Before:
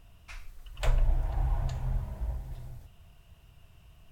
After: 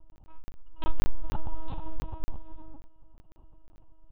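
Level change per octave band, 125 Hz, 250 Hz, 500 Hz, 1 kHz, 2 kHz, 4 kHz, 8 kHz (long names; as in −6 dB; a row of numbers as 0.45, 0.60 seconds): −6.0 dB, +4.5 dB, −1.5 dB, +1.5 dB, −4.5 dB, −2.5 dB, can't be measured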